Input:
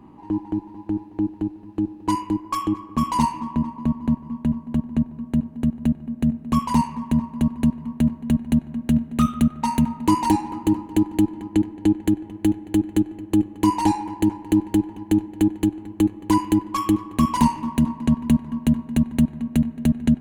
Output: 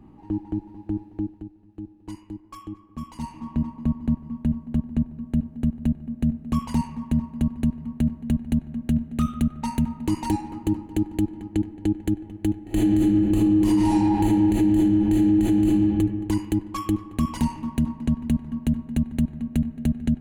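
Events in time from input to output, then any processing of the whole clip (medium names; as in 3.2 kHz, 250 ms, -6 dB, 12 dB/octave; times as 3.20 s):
0.97–3.67 s: dip -10.5 dB, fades 0.47 s equal-power
12.63–15.76 s: reverb throw, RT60 1.4 s, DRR -10.5 dB
whole clip: bass shelf 120 Hz +11.5 dB; band-stop 1 kHz, Q 6.5; peak limiter -7.5 dBFS; trim -5 dB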